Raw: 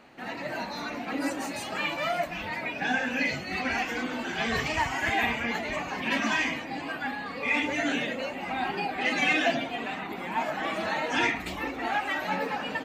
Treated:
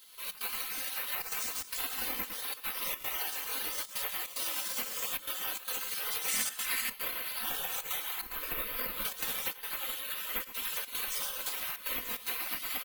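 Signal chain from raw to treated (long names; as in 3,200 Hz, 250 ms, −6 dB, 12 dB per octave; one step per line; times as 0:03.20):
sub-octave generator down 2 octaves, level +2 dB
gate on every frequency bin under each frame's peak −20 dB weak
0:08.21–0:09.05: spectral tilt −2 dB per octave
slap from a distant wall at 18 metres, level −12 dB
gate pattern "xxx.xxxxxxxx." 148 BPM −12 dB
downward compressor 12 to 1, threshold −45 dBFS, peak gain reduction 14.5 dB
comb filter 3.9 ms, depth 69%
bad sample-rate conversion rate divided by 3×, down none, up zero stuff
0:06.28–0:06.90: graphic EQ with 10 bands 250 Hz +7 dB, 500 Hz −6 dB, 2,000 Hz +8 dB, 8,000 Hz +10 dB
level +7 dB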